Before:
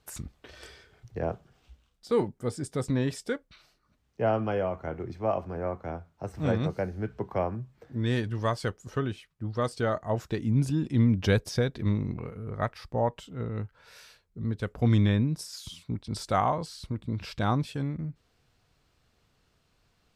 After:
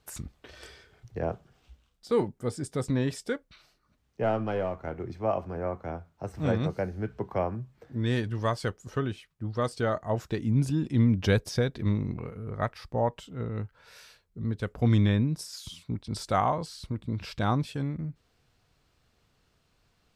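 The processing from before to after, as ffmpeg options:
-filter_complex "[0:a]asettb=1/sr,asplit=3[a][b][c];[a]atrim=end=4.234[d];[b]atrim=start=4.23:end=4.98,asetpts=PTS-STARTPTS,afade=t=in:d=0.004:c=qsin,afade=t=out:st=0.746:d=0.004:c=qsin,aeval=exprs='if(lt(val(0),0),0.708*val(0),val(0))':c=same[e];[c]atrim=start=4.976[f];[d][e]acrossfade=d=0.004:c1=hsin:c2=qsin[g];[g][f]acrossfade=d=0.004:c1=qsin:c2=hsin"

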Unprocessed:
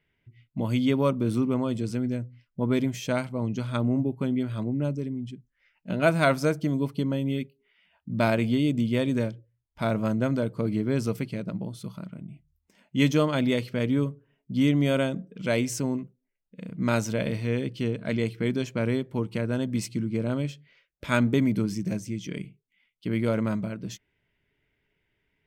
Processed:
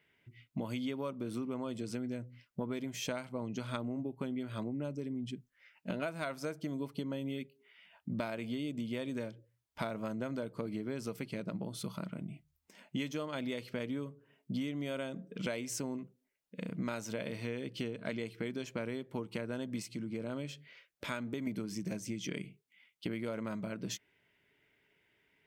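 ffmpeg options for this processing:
-filter_complex "[0:a]asettb=1/sr,asplit=3[a][b][c];[a]atrim=end=19.824[d];[b]atrim=start=19.82:end=21.47,asetpts=PTS-STARTPTS,afade=t=in:d=0.004:c=qsin,afade=t=out:st=1.646:d=0.004:c=qsin,acompressor=threshold=-48dB:ratio=1.5:attack=3.2:release=140:knee=1:detection=peak[e];[c]atrim=start=21.466[f];[d][e]acrossfade=d=0.004:c1=hsin:c2=qsin[g];[g][f]acrossfade=d=0.004:c1=qsin:c2=hsin,highpass=f=290:p=1,acompressor=threshold=-38dB:ratio=16,volume=4dB"

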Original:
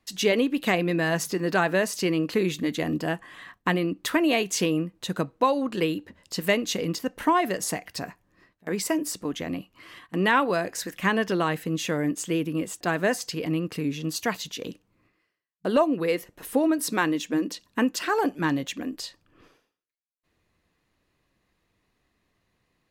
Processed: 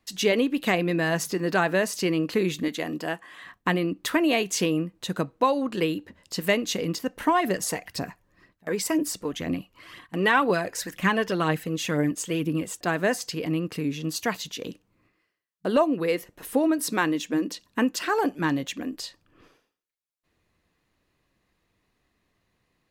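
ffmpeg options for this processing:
-filter_complex "[0:a]asettb=1/sr,asplit=3[a][b][c];[a]atrim=end=2.684[d];[b]atrim=start=2.68:end=3.44,asetpts=PTS-STARTPTS,afade=t=in:d=0.004:c=qsin,afade=t=out:st=0.756:d=0.004:c=qsin,highpass=f=380:p=1[e];[c]atrim=start=3.436[f];[d][e]acrossfade=d=0.004:c1=hsin:c2=qsin[g];[g][f]acrossfade=d=0.004:c1=qsin:c2=hsin,asplit=3[h][i][j];[h]afade=t=out:st=7.29:d=0.02[k];[i]aphaser=in_gain=1:out_gain=1:delay=2.3:decay=0.4:speed=2:type=triangular,afade=t=in:st=7.29:d=0.02,afade=t=out:st=12.82:d=0.02[l];[j]afade=t=in:st=12.82:d=0.02[m];[k][l][m]amix=inputs=3:normalize=0"

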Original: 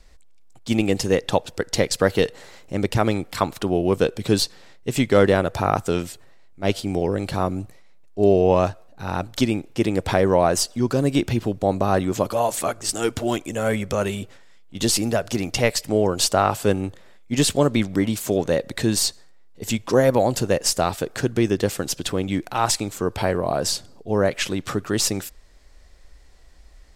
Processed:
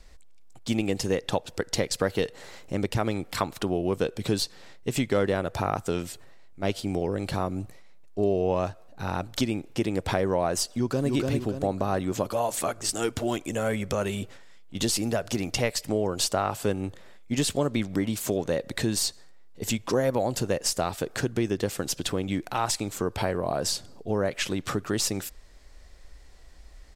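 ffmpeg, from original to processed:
-filter_complex "[0:a]asplit=2[a][b];[b]afade=t=in:st=10.7:d=0.01,afade=t=out:st=11.11:d=0.01,aecho=0:1:290|580|870|1160|1450:0.749894|0.262463|0.091862|0.0321517|0.0112531[c];[a][c]amix=inputs=2:normalize=0,acompressor=threshold=-27dB:ratio=2"

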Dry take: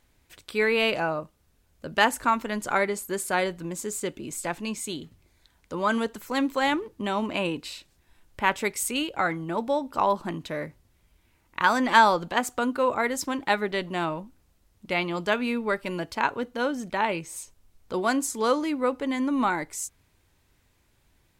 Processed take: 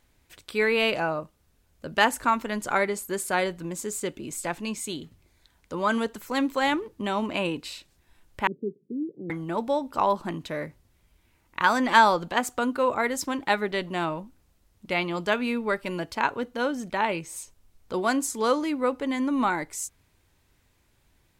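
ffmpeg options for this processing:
-filter_complex "[0:a]asettb=1/sr,asplit=3[a][b][c];[a]atrim=end=8.474[d];[b]atrim=start=8.47:end=9.3,asetpts=PTS-STARTPTS,afade=t=in:d=0.004:c=qsin,afade=t=out:st=0.826:d=0.004:c=qsin,asuperpass=centerf=240:order=12:qfactor=0.8[e];[c]atrim=start=9.296[f];[d][e]acrossfade=d=0.004:c1=hsin:c2=qsin[g];[g][f]acrossfade=d=0.004:c1=qsin:c2=hsin"

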